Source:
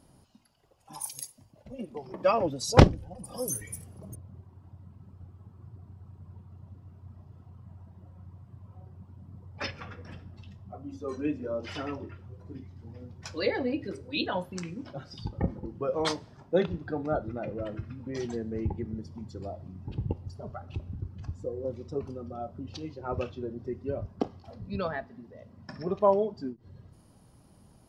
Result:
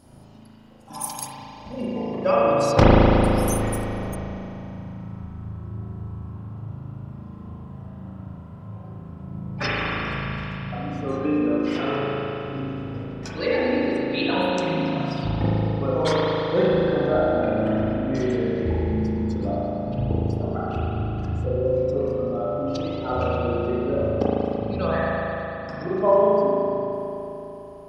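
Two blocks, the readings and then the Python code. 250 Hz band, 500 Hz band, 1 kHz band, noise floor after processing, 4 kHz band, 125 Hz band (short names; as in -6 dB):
+10.0 dB, +10.0 dB, +9.0 dB, -40 dBFS, +6.0 dB, +8.0 dB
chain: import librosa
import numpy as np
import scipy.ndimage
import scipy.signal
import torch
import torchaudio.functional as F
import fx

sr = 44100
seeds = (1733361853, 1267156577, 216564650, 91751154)

p1 = fx.rider(x, sr, range_db=10, speed_s=0.5)
p2 = x + (p1 * 10.0 ** (-1.5 / 20.0))
p3 = fx.rev_spring(p2, sr, rt60_s=3.6, pass_ms=(37,), chirp_ms=80, drr_db=-8.5)
y = p3 * 10.0 ** (-4.5 / 20.0)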